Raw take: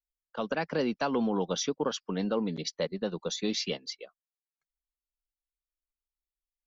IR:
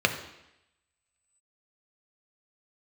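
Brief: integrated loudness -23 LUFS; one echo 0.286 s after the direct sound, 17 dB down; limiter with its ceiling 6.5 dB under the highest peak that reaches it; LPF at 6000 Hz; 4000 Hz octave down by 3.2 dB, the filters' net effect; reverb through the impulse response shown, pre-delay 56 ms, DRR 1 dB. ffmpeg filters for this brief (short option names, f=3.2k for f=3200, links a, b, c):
-filter_complex "[0:a]lowpass=6k,equalizer=f=4k:t=o:g=-3,alimiter=limit=-22.5dB:level=0:latency=1,aecho=1:1:286:0.141,asplit=2[a][b];[1:a]atrim=start_sample=2205,adelay=56[c];[b][c]afir=irnorm=-1:irlink=0,volume=-15.5dB[d];[a][d]amix=inputs=2:normalize=0,volume=8.5dB"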